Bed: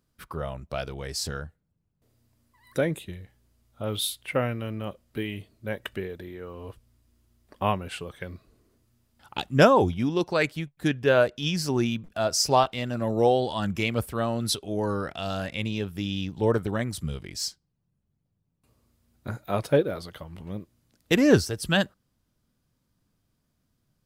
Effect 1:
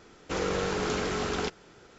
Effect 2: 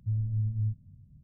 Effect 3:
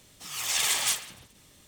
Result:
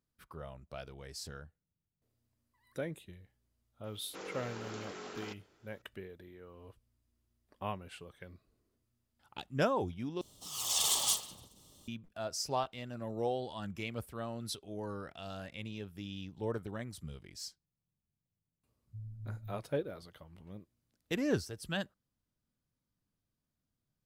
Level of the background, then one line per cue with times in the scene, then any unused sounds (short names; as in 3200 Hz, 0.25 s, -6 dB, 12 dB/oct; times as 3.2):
bed -13.5 dB
3.84 add 1 -14.5 dB + HPF 220 Hz
10.21 replace with 3 -3.5 dB + band shelf 1900 Hz -15.5 dB 1 oct
18.87 add 2 -16 dB